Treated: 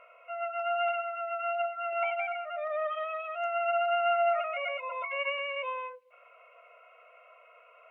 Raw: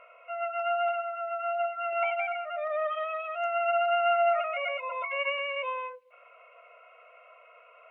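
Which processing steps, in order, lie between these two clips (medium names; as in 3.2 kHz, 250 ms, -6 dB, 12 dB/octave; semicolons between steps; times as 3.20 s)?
0.75–1.62 s: dynamic bell 2.5 kHz, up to +6 dB, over -48 dBFS, Q 1.3; trim -2 dB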